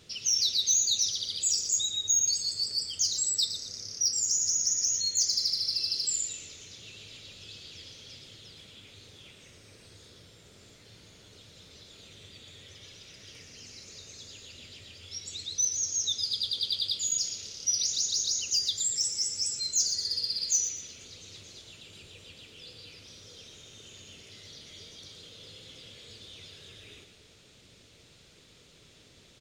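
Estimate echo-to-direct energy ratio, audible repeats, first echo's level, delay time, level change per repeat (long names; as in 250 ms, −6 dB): −9.0 dB, 3, −9.5 dB, 117 ms, −9.5 dB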